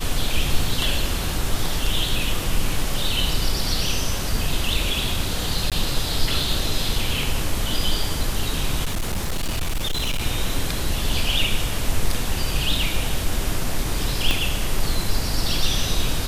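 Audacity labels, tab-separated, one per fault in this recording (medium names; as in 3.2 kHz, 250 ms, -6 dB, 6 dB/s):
5.700000	5.720000	dropout 17 ms
8.840000	10.220000	clipped -19.5 dBFS
14.310000	14.310000	pop -6 dBFS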